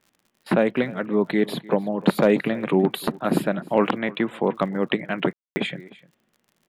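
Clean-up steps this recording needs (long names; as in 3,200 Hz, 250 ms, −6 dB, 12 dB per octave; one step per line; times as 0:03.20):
clipped peaks rebuilt −7 dBFS
click removal
ambience match 0:05.33–0:05.56
echo removal 302 ms −21 dB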